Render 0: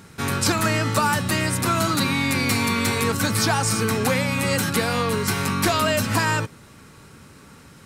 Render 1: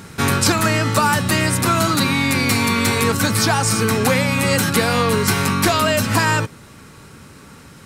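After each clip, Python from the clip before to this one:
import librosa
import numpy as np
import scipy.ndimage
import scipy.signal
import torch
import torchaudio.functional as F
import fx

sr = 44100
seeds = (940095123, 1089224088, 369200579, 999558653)

y = fx.rider(x, sr, range_db=10, speed_s=0.5)
y = F.gain(torch.from_numpy(y), 4.5).numpy()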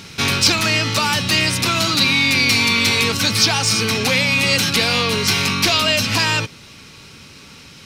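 y = 10.0 ** (-10.5 / 20.0) * np.tanh(x / 10.0 ** (-10.5 / 20.0))
y = fx.band_shelf(y, sr, hz=3700.0, db=11.5, octaves=1.7)
y = F.gain(torch.from_numpy(y), -2.5).numpy()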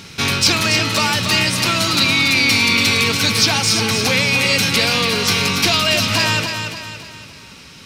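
y = fx.echo_feedback(x, sr, ms=284, feedback_pct=44, wet_db=-7)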